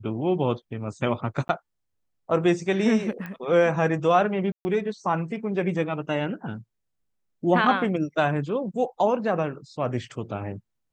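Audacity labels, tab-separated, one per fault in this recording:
1.480000	1.490000	drop-out 11 ms
3.260000	3.260000	click −23 dBFS
4.520000	4.650000	drop-out 130 ms

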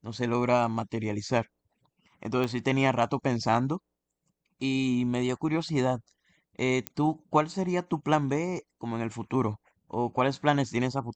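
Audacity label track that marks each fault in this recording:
2.440000	2.440000	click −18 dBFS
6.870000	6.870000	click −14 dBFS

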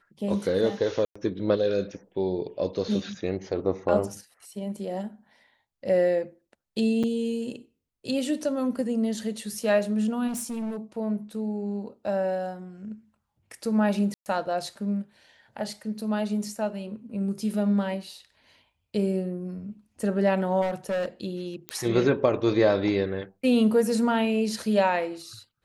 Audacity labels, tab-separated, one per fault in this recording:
1.050000	1.160000	drop-out 105 ms
7.030000	7.040000	drop-out 6.3 ms
10.270000	10.770000	clipping −28.5 dBFS
14.140000	14.260000	drop-out 119 ms
20.610000	21.060000	clipping −24 dBFS
21.690000	21.690000	click −16 dBFS

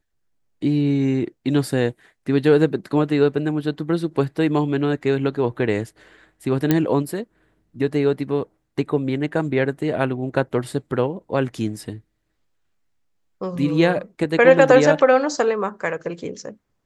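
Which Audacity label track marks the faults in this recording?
6.710000	6.710000	click −4 dBFS

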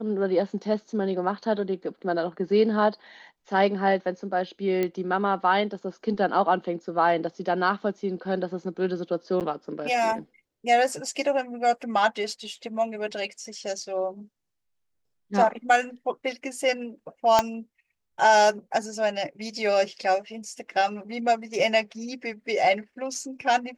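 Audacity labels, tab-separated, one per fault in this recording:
4.830000	4.830000	click −14 dBFS
9.400000	9.410000	drop-out 8.2 ms
17.390000	17.390000	click −6 dBFS

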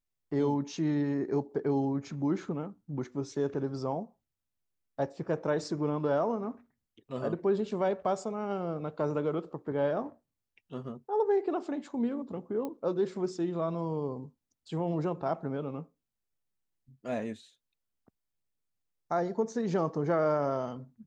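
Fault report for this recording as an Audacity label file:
12.650000	12.650000	click −24 dBFS

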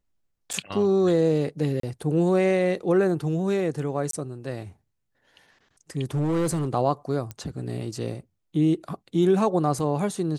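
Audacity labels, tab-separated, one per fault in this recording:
0.530000	0.540000	drop-out 6 ms
1.800000	1.830000	drop-out 33 ms
4.110000	4.130000	drop-out 23 ms
6.140000	6.690000	clipping −21 dBFS
7.310000	7.310000	click −20 dBFS

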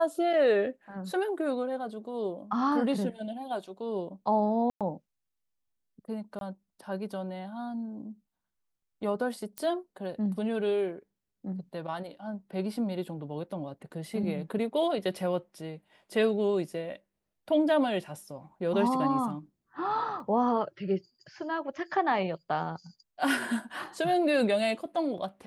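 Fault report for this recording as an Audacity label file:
4.700000	4.810000	drop-out 107 ms
6.390000	6.410000	drop-out 22 ms
9.580000	9.580000	click −19 dBFS
20.200000	20.200000	drop-out 2 ms

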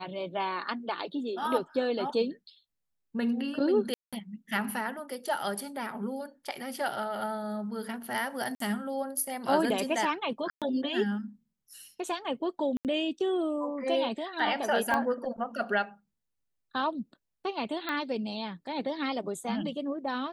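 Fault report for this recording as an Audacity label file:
3.940000	4.130000	drop-out 186 ms
8.550000	8.600000	drop-out 53 ms
10.500000	10.620000	drop-out 117 ms
12.770000	12.850000	drop-out 78 ms
14.940000	14.940000	click −16 dBFS
17.890000	17.890000	click −19 dBFS

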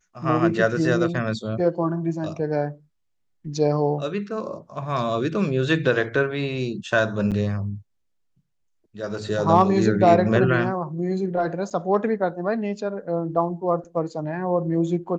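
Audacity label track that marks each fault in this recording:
7.310000	7.320000	drop-out 7.6 ms
11.700000	11.710000	drop-out 6.8 ms

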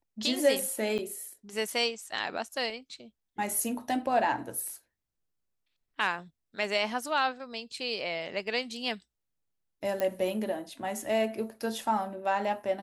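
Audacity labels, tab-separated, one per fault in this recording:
0.980000	0.990000	drop-out 7 ms
2.700000	2.700000	drop-out 2.7 ms
10.000000	10.000000	click −17 dBFS

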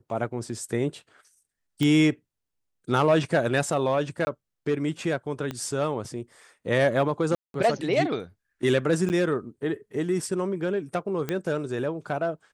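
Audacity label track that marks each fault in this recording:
1.830000	1.830000	click −14 dBFS
4.250000	4.270000	drop-out 20 ms
5.510000	5.510000	click −18 dBFS
7.350000	7.540000	drop-out 192 ms
9.090000	9.100000	drop-out 9.4 ms
11.290000	11.290000	click −14 dBFS

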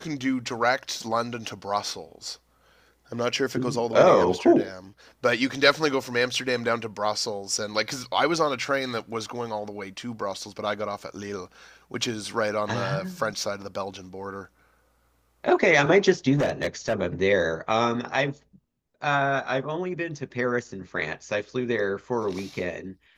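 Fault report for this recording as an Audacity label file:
16.360000	16.930000	clipping −19 dBFS

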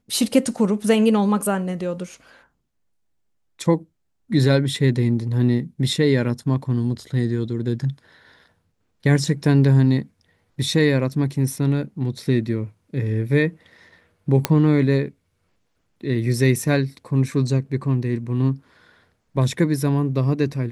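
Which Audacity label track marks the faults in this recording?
14.450000	14.450000	click −2 dBFS

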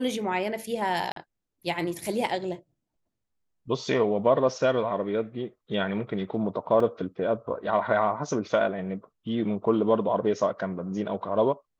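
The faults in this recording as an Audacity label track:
1.120000	1.160000	drop-out 43 ms
6.800000	6.800000	drop-out 3.2 ms

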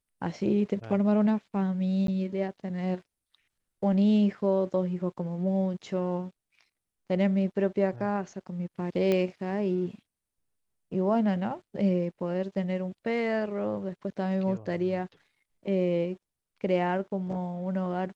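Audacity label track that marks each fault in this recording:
2.070000	2.080000	drop-out
9.120000	9.120000	click −15 dBFS

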